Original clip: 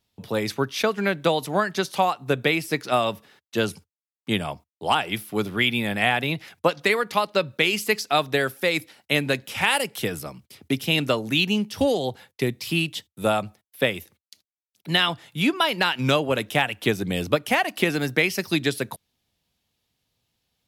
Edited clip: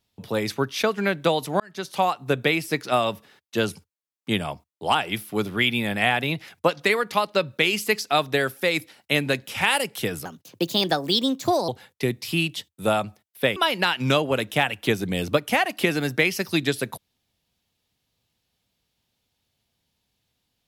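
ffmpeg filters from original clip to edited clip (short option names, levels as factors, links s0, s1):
-filter_complex "[0:a]asplit=5[s0][s1][s2][s3][s4];[s0]atrim=end=1.6,asetpts=PTS-STARTPTS,afade=t=out:st=1.596:d=0.004:c=hsin[s5];[s1]atrim=start=1.6:end=10.254,asetpts=PTS-STARTPTS,afade=t=in:d=0.46[s6];[s2]atrim=start=10.25:end=12.07,asetpts=PTS-STARTPTS,asetrate=56007,aresample=44100,atrim=end_sample=63198,asetpts=PTS-STARTPTS[s7];[s3]atrim=start=12.066:end=13.952[s8];[s4]atrim=start=15.548[s9];[s5][s6]concat=n=2:v=0:a=1[s10];[s10][s7]acrossfade=d=0.004:c1=hsin:c2=hsin[s11];[s11][s8]acrossfade=d=0.004:c1=hsin:c2=hsin[s12];[s12][s9]acrossfade=d=0.004:c1=hsin:c2=hsin"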